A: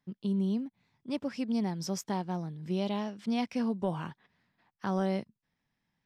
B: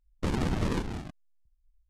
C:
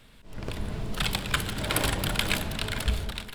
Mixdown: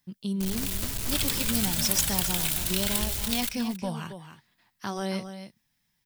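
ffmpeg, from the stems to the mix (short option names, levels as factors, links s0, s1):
-filter_complex "[0:a]volume=1.06,asplit=3[s0][s1][s2];[s1]volume=0.299[s3];[1:a]acompressor=threshold=0.0224:ratio=6,adelay=600,volume=0.891[s4];[2:a]alimiter=limit=0.15:level=0:latency=1:release=145,acompressor=threshold=0.0178:ratio=3,acrusher=bits=6:mix=0:aa=0.000001,adelay=150,volume=0.944,asplit=2[s5][s6];[s6]volume=0.178[s7];[s2]apad=whole_len=110157[s8];[s4][s8]sidechaingate=range=0.0224:threshold=0.00112:ratio=16:detection=peak[s9];[s3][s7]amix=inputs=2:normalize=0,aecho=0:1:274:1[s10];[s0][s9][s5][s10]amix=inputs=4:normalize=0,lowshelf=f=170:g=8.5,crystalizer=i=8:c=0,flanger=delay=1.1:depth=2.1:regen=-72:speed=0.54:shape=sinusoidal"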